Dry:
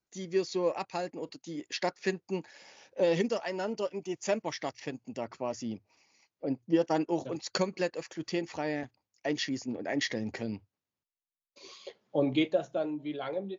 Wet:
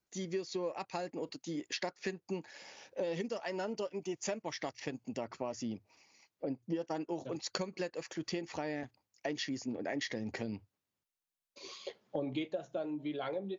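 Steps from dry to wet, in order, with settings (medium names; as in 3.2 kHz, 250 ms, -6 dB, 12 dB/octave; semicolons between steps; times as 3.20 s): compression 5:1, threshold -36 dBFS, peak gain reduction 14 dB; trim +1.5 dB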